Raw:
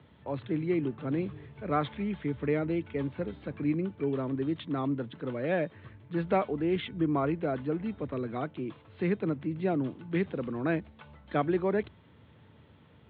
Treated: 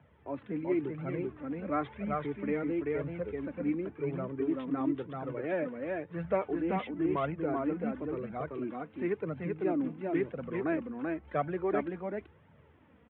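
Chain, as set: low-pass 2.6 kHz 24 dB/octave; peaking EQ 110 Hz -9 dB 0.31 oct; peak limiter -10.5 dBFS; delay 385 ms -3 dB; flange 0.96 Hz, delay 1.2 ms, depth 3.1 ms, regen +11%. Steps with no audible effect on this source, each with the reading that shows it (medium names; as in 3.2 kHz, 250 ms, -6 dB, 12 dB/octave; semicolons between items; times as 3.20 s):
peak limiter -10.5 dBFS: peak at its input -14.5 dBFS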